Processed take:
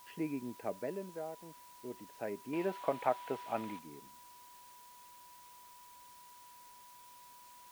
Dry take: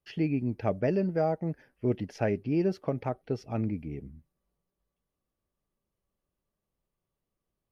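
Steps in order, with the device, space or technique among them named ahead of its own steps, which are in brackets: shortwave radio (BPF 270–2700 Hz; tremolo 0.32 Hz, depth 72%; whine 980 Hz -50 dBFS; white noise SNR 16 dB); 2.53–3.79 band shelf 1500 Hz +10 dB 2.9 oct; gain -6 dB

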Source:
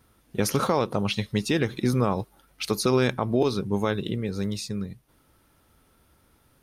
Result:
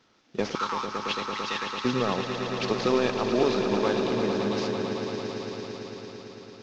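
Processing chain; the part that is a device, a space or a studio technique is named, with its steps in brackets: early wireless headset (HPF 210 Hz 12 dB/oct; CVSD 32 kbps); 0.55–1.85 Chebyshev band-pass 870–9100 Hz, order 5; swelling echo 0.112 s, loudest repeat 5, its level -9 dB

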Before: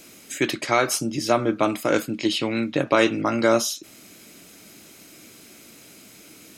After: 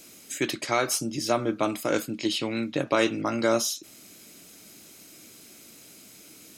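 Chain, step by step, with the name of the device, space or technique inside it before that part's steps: exciter from parts (in parallel at -4.5 dB: HPF 3000 Hz 12 dB/oct + soft clip -22.5 dBFS, distortion -14 dB); on the sum: gain -4.5 dB

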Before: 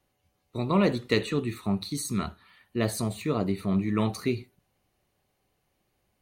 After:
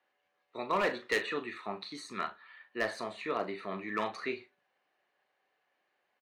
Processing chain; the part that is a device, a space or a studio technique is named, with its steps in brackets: megaphone (BPF 580–3000 Hz; bell 1700 Hz +8 dB 0.29 oct; hard clip -22.5 dBFS, distortion -14 dB; doubler 38 ms -10 dB)

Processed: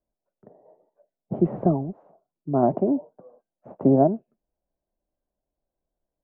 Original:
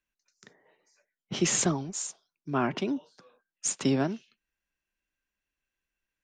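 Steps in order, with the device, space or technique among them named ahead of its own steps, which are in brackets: 1.34–2.63 bell 680 Hz -5 dB 1.5 oct; under water (LPF 790 Hz 24 dB/oct; bell 650 Hz +10 dB 0.59 oct); gain +7 dB

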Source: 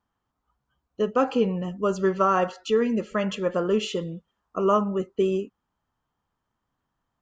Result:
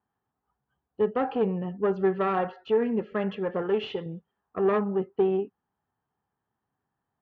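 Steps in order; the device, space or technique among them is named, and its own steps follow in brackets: 3.62–4.06 tilt shelf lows -5 dB, about 720 Hz; guitar amplifier (tube stage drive 18 dB, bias 0.45; tone controls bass +7 dB, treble -8 dB; speaker cabinet 100–3900 Hz, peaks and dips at 410 Hz +9 dB, 790 Hz +9 dB, 1700 Hz +6 dB); gain -5.5 dB

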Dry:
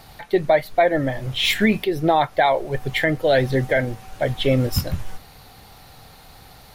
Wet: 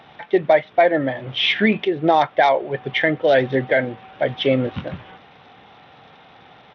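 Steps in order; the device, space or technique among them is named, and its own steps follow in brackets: Bluetooth headset (HPF 190 Hz 12 dB/oct; downsampling 8000 Hz; gain +2 dB; SBC 64 kbps 32000 Hz)

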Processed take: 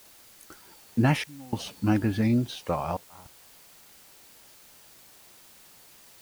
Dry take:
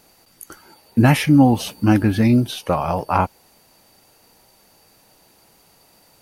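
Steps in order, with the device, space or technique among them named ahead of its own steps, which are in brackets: worn cassette (LPF 7900 Hz; wow and flutter; level dips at 1.24/2.97, 0.285 s -25 dB; white noise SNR 23 dB); gain -8.5 dB

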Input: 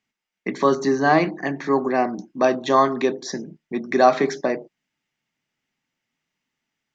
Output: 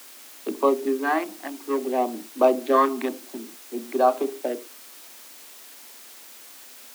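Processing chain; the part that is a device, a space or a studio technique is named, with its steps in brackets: Wiener smoothing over 25 samples; shortwave radio (BPF 290–2800 Hz; tremolo 0.36 Hz, depth 49%; LFO notch sine 0.55 Hz 420–2000 Hz; white noise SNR 19 dB); steep high-pass 210 Hz 96 dB/oct; gain +2.5 dB

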